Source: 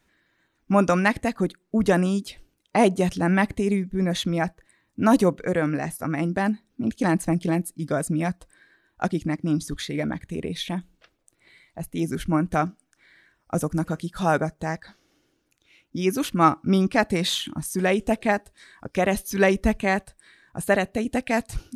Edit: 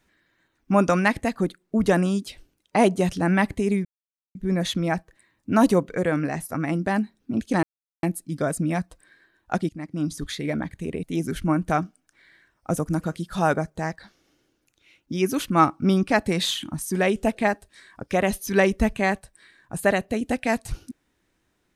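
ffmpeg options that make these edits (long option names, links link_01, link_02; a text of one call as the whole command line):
ffmpeg -i in.wav -filter_complex "[0:a]asplit=6[link_01][link_02][link_03][link_04][link_05][link_06];[link_01]atrim=end=3.85,asetpts=PTS-STARTPTS,afade=type=out:start_time=3.846:duration=0.004:curve=hsin,apad=pad_dur=0.5[link_07];[link_02]atrim=start=3.85:end=7.13,asetpts=PTS-STARTPTS,afade=type=in:duration=0.004:curve=hsin,afade=type=out:start_time=3.276:duration=0.004:curve=hsin[link_08];[link_03]atrim=start=7.13:end=7.53,asetpts=PTS-STARTPTS,volume=0[link_09];[link_04]atrim=start=7.53:end=9.19,asetpts=PTS-STARTPTS,afade=type=in:duration=0.004:curve=hsin,afade=type=out:start_time=1.656:duration=0.004:curve=hsin:silence=0.149624[link_10];[link_05]atrim=start=9.19:end=10.532,asetpts=PTS-STARTPTS,afade=type=in:duration=0.72:curve=qsin:silence=0.149624[link_11];[link_06]atrim=start=11.868[link_12];[link_07][link_08][link_09][link_10][link_11]concat=n=5:v=0:a=1[link_13];[link_13][link_12]acrossfade=duration=0.004:curve1=hsin:curve2=hsin" out.wav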